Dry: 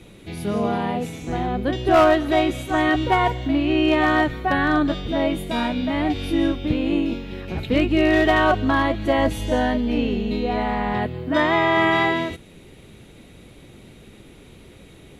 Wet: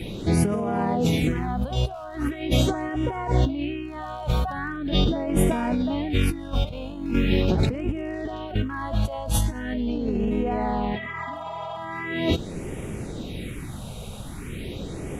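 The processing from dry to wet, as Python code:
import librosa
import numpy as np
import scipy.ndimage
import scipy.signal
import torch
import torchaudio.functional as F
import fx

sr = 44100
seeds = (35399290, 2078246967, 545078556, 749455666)

y = fx.spec_repair(x, sr, seeds[0], start_s=10.99, length_s=0.76, low_hz=360.0, high_hz=8000.0, source='after')
y = fx.over_compress(y, sr, threshold_db=-30.0, ratio=-1.0)
y = fx.phaser_stages(y, sr, stages=4, low_hz=310.0, high_hz=4200.0, hz=0.41, feedback_pct=5)
y = F.gain(torch.from_numpy(y), 5.0).numpy()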